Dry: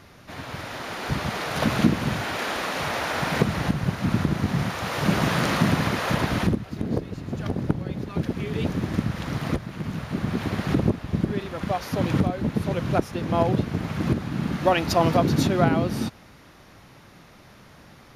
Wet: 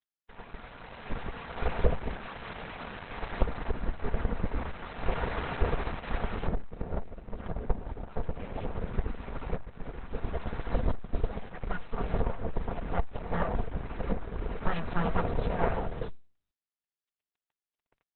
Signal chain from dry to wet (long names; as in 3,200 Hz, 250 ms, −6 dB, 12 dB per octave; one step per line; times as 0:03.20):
0:07.66–0:08.43: high-pass filter 55 Hz 12 dB per octave
full-wave rectification
head-to-tape spacing loss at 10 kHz 39 dB
dead-zone distortion −42 dBFS
parametric band 300 Hz −10.5 dB 0.77 octaves
0:10.06–0:11.68: noise that follows the level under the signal 26 dB
comb filter 4.3 ms, depth 38%
Opus 8 kbit/s 48,000 Hz